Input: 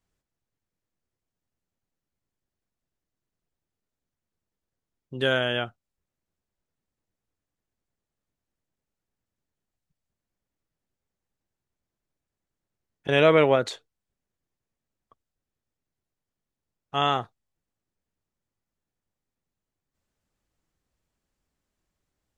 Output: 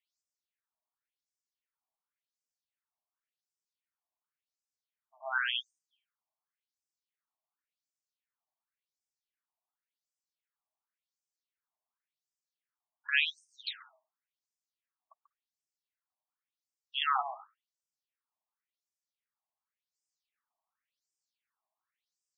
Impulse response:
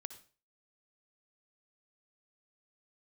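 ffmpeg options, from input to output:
-filter_complex "[0:a]bandreject=f=560:w=12,asplit=2[s0][s1];[1:a]atrim=start_sample=2205,adelay=138[s2];[s1][s2]afir=irnorm=-1:irlink=0,volume=0.473[s3];[s0][s3]amix=inputs=2:normalize=0,afftfilt=real='re*between(b*sr/1024,820*pow(6800/820,0.5+0.5*sin(2*PI*0.91*pts/sr))/1.41,820*pow(6800/820,0.5+0.5*sin(2*PI*0.91*pts/sr))*1.41)':imag='im*between(b*sr/1024,820*pow(6800/820,0.5+0.5*sin(2*PI*0.91*pts/sr))/1.41,820*pow(6800/820,0.5+0.5*sin(2*PI*0.91*pts/sr))*1.41)':win_size=1024:overlap=0.75"

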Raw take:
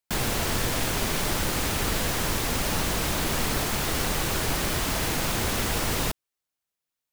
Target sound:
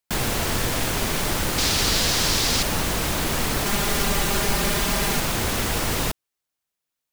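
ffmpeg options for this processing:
-filter_complex "[0:a]asettb=1/sr,asplit=3[s0][s1][s2];[s0]atrim=end=1.584[s3];[s1]atrim=start=1.58:end=2.63,asetpts=PTS-STARTPTS,afade=t=in:d=0.004:c=qsin,afade=t=out:st=1.046:d=0.004:c=qsin,equalizer=f=4700:t=o:w=1.3:g=10.5[s4];[s2]atrim=start=2.626[s5];[s3][s4]acrossfade=d=0.004:c1=hsin:c2=qsin[s6];[s6][s5]acrossfade=d=0.004:c1=qsin:c2=hsin,asettb=1/sr,asplit=3[s7][s8][s9];[s7]atrim=end=3.654[s10];[s8]atrim=start=3.65:end=5.2,asetpts=PTS-STARTPTS,afade=t=in:d=0.004:c=qsin,afade=t=out:st=1.546:d=0.004:c=qsin,aecho=1:1:5:0.74,atrim=end_sample=68355[s11];[s9]atrim=start=5.196[s12];[s10][s11]acrossfade=d=0.004:c1=hsin:c2=qsin[s13];[s13][s12]acrossfade=d=0.004:c1=qsin:c2=hsin,volume=1.33"

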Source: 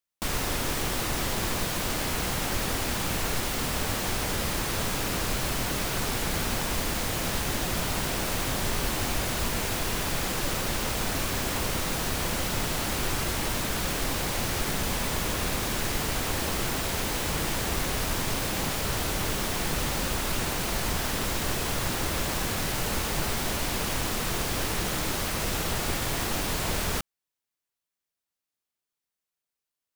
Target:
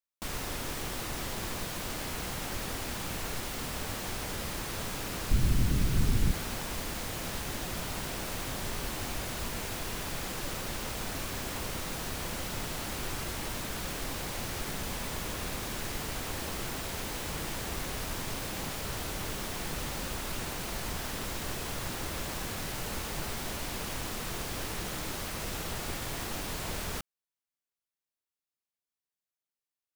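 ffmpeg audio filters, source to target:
-filter_complex "[0:a]asplit=3[s0][s1][s2];[s0]afade=t=out:st=5.3:d=0.02[s3];[s1]asubboost=boost=6.5:cutoff=240,afade=t=in:st=5.3:d=0.02,afade=t=out:st=6.31:d=0.02[s4];[s2]afade=t=in:st=6.31:d=0.02[s5];[s3][s4][s5]amix=inputs=3:normalize=0,volume=0.422"

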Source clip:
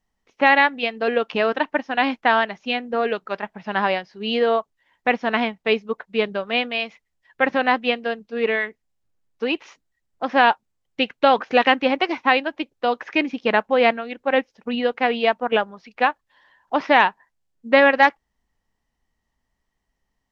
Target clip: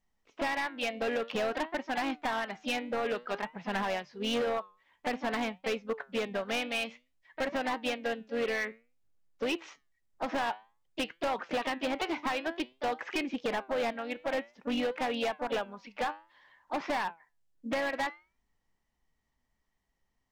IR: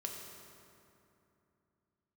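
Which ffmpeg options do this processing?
-filter_complex "[0:a]acompressor=threshold=0.1:ratio=12,asplit=2[s0][s1];[s1]asetrate=52444,aresample=44100,atempo=0.840896,volume=0.251[s2];[s0][s2]amix=inputs=2:normalize=0,flanger=delay=5:depth=5.5:regen=84:speed=0.53:shape=triangular,volume=22.4,asoftclip=hard,volume=0.0447"

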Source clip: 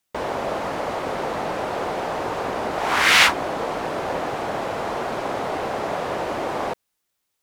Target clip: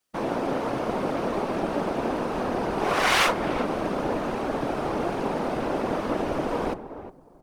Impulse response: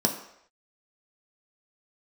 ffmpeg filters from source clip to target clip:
-filter_complex "[0:a]asplit=2[s0][s1];[s1]adelay=361,lowpass=f=800:p=1,volume=0.335,asplit=2[s2][s3];[s3]adelay=361,lowpass=f=800:p=1,volume=0.23,asplit=2[s4][s5];[s5]adelay=361,lowpass=f=800:p=1,volume=0.23[s6];[s0][s2][s4][s6]amix=inputs=4:normalize=0,asplit=2[s7][s8];[1:a]atrim=start_sample=2205,afade=t=out:st=0.27:d=0.01,atrim=end_sample=12348,asetrate=70560,aresample=44100[s9];[s8][s9]afir=irnorm=-1:irlink=0,volume=0.15[s10];[s7][s10]amix=inputs=2:normalize=0,asubboost=boost=8.5:cutoff=52,asoftclip=type=tanh:threshold=0.237,afftfilt=real='hypot(re,im)*cos(2*PI*random(0))':imag='hypot(re,im)*sin(2*PI*random(1))':win_size=512:overlap=0.75,asplit=2[s11][s12];[s12]asetrate=22050,aresample=44100,atempo=2,volume=1[s13];[s11][s13]amix=inputs=2:normalize=0"

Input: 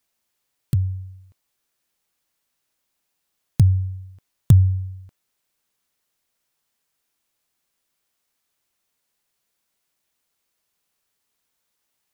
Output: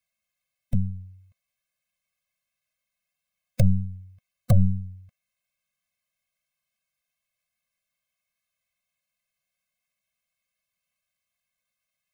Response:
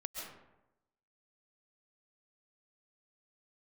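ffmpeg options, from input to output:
-af "equalizer=f=2300:w=3:g=11,aeval=exprs='0.794*(cos(1*acos(clip(val(0)/0.794,-1,1)))-cos(1*PI/2))+0.112*(cos(2*acos(clip(val(0)/0.794,-1,1)))-cos(2*PI/2))+0.224*(cos(8*acos(clip(val(0)/0.794,-1,1)))-cos(8*PI/2))':c=same,afftfilt=real='re*eq(mod(floor(b*sr/1024/250),2),0)':imag='im*eq(mod(floor(b*sr/1024/250),2),0)':win_size=1024:overlap=0.75,volume=0.473"

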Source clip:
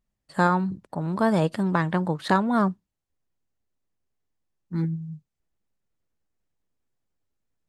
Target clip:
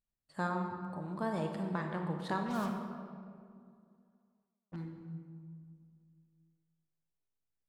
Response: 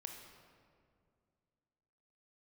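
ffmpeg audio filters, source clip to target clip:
-filter_complex "[0:a]asettb=1/sr,asplit=3[s0][s1][s2];[s0]atrim=end=2.464[s3];[s1]atrim=start=2.46:end=4.76,asetpts=PTS-STARTPTS,afade=t=in:d=0.004:c=qsin,afade=t=out:st=2.296:d=0.004:c=qsin,acrusher=bits=4:mix=0:aa=0.5[s4];[s2]atrim=start=4.756[s5];[s3][s4]acrossfade=d=0.004:c1=hsin:c2=qsin[s6];[s6][s5]acrossfade=d=0.004:c1=qsin:c2=hsin[s7];[1:a]atrim=start_sample=2205[s8];[s7][s8]afir=irnorm=-1:irlink=0,volume=0.355"

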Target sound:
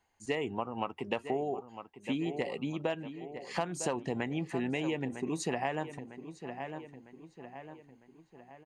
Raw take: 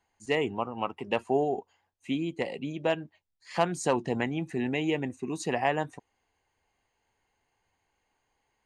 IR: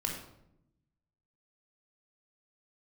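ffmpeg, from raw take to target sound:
-filter_complex "[0:a]asplit=2[s0][s1];[s1]adelay=953,lowpass=f=3600:p=1,volume=0.2,asplit=2[s2][s3];[s3]adelay=953,lowpass=f=3600:p=1,volume=0.48,asplit=2[s4][s5];[s5]adelay=953,lowpass=f=3600:p=1,volume=0.48,asplit=2[s6][s7];[s7]adelay=953,lowpass=f=3600:p=1,volume=0.48,asplit=2[s8][s9];[s9]adelay=953,lowpass=f=3600:p=1,volume=0.48[s10];[s2][s4][s6][s8][s10]amix=inputs=5:normalize=0[s11];[s0][s11]amix=inputs=2:normalize=0,acompressor=threshold=0.0355:ratio=6"

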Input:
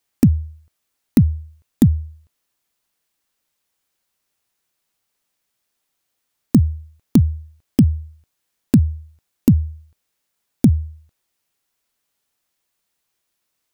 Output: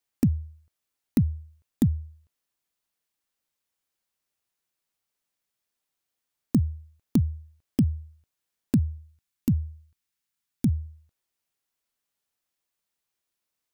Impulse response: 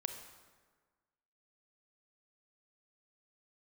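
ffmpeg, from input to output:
-filter_complex "[0:a]asettb=1/sr,asplit=3[s0][s1][s2];[s0]atrim=end=8.984[s3];[s1]atrim=start=8.98:end=10.86,asetpts=PTS-STARTPTS,afade=t=in:d=0.004:c=qsin,afade=t=out:st=1.876:d=0.004:c=qsin,equalizer=f=550:t=o:w=1.3:g=-10.5[s4];[s2]atrim=start=10.856[s5];[s3][s4]acrossfade=d=0.004:c1=hsin:c2=qsin[s6];[s6][s5]acrossfade=d=0.004:c1=qsin:c2=hsin,volume=0.355"

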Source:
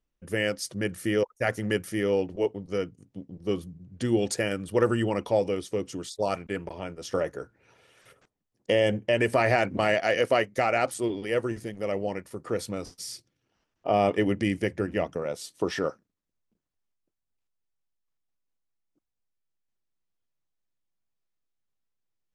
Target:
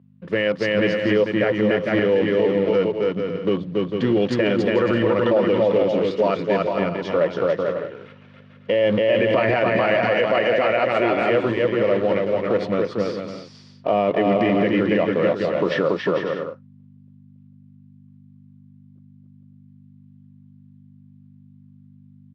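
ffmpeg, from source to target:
-filter_complex "[0:a]equalizer=f=1200:w=8:g=-3,bandreject=f=790:w=12,asplit=2[s0][s1];[s1]acrusher=bits=6:dc=4:mix=0:aa=0.000001,volume=0.398[s2];[s0][s2]amix=inputs=2:normalize=0,aeval=exprs='val(0)+0.00282*(sin(2*PI*50*n/s)+sin(2*PI*2*50*n/s)/2+sin(2*PI*3*50*n/s)/3+sin(2*PI*4*50*n/s)/4+sin(2*PI*5*50*n/s)/5)':c=same,highpass=f=120:w=0.5412,highpass=f=120:w=1.3066,equalizer=f=180:t=q:w=4:g=3,equalizer=f=540:t=q:w=4:g=4,equalizer=f=1100:t=q:w=4:g=5,lowpass=f=3700:w=0.5412,lowpass=f=3700:w=1.3066,asplit=2[s3][s4];[s4]aecho=0:1:280|448|548.8|609.3|645.6:0.631|0.398|0.251|0.158|0.1[s5];[s3][s5]amix=inputs=2:normalize=0,alimiter=level_in=5.31:limit=0.891:release=50:level=0:latency=1,volume=0.355"

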